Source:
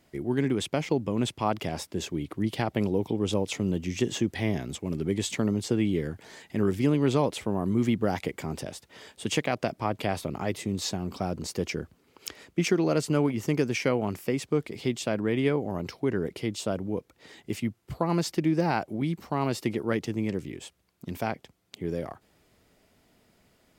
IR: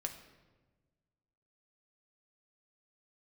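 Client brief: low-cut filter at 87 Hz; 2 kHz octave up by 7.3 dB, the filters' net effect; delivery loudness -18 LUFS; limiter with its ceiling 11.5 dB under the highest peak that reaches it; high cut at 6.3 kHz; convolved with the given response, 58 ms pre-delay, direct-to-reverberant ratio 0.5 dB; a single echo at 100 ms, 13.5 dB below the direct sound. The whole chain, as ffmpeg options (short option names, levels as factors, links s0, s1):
-filter_complex "[0:a]highpass=87,lowpass=6300,equalizer=f=2000:t=o:g=9,alimiter=limit=0.106:level=0:latency=1,aecho=1:1:100:0.211,asplit=2[s0][s1];[1:a]atrim=start_sample=2205,adelay=58[s2];[s1][s2]afir=irnorm=-1:irlink=0,volume=1[s3];[s0][s3]amix=inputs=2:normalize=0,volume=3.35"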